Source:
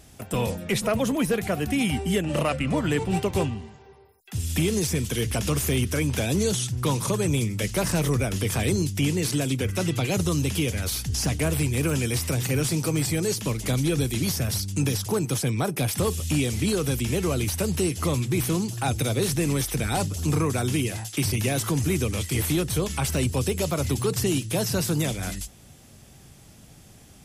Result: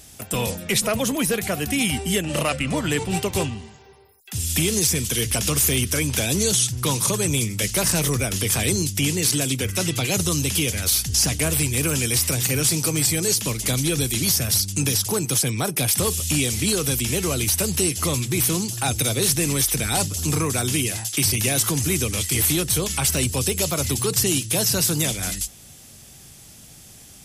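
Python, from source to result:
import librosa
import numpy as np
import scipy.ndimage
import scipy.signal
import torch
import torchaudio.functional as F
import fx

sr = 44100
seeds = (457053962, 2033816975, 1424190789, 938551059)

y = fx.high_shelf(x, sr, hz=2600.0, db=11.0)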